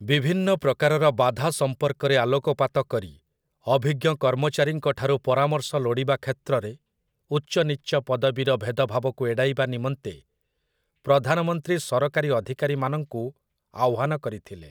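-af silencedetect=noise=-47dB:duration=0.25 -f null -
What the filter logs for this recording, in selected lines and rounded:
silence_start: 3.17
silence_end: 3.66 | silence_duration: 0.49
silence_start: 6.76
silence_end: 7.31 | silence_duration: 0.55
silence_start: 10.20
silence_end: 11.04 | silence_duration: 0.85
silence_start: 13.31
silence_end: 13.74 | silence_duration: 0.43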